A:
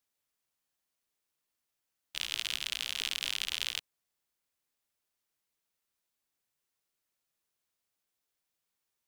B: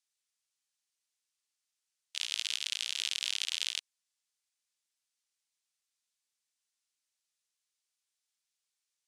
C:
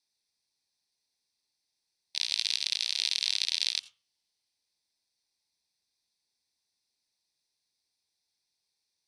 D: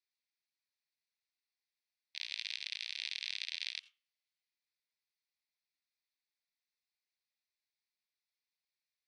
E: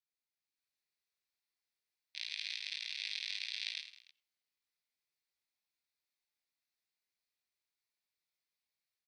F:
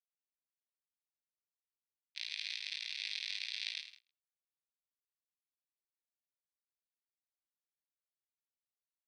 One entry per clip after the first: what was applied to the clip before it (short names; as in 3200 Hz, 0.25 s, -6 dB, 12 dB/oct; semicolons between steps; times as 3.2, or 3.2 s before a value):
weighting filter ITU-R 468; gain -9 dB
LPF 12000 Hz 12 dB/oct; reverb RT60 0.30 s, pre-delay 80 ms, DRR 16 dB
band-pass 2100 Hz, Q 1.9; gain -3 dB
AGC gain up to 6.5 dB; on a send: reverse bouncing-ball echo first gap 20 ms, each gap 1.6×, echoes 5; on the sum: gain -8.5 dB
gate -55 dBFS, range -20 dB